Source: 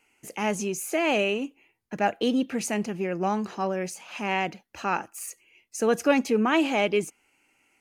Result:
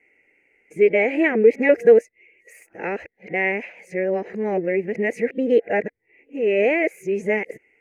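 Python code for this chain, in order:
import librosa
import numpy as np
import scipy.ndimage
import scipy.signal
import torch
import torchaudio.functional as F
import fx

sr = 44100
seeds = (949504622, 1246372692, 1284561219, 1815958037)

y = np.flip(x).copy()
y = fx.curve_eq(y, sr, hz=(280.0, 470.0, 1200.0, 2000.0, 3300.0), db=(0, 13, -16, 14, -16))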